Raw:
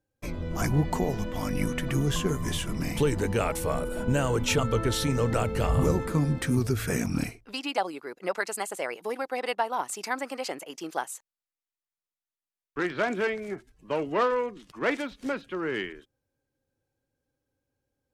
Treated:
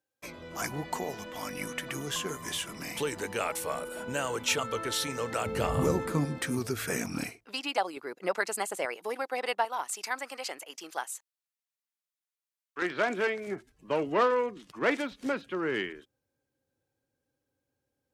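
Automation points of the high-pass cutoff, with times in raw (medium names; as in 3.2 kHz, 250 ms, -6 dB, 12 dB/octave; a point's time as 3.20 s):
high-pass 6 dB/octave
850 Hz
from 5.46 s 210 Hz
from 6.25 s 420 Hz
from 7.97 s 110 Hz
from 8.85 s 420 Hz
from 9.65 s 1.1 kHz
from 12.82 s 310 Hz
from 13.47 s 100 Hz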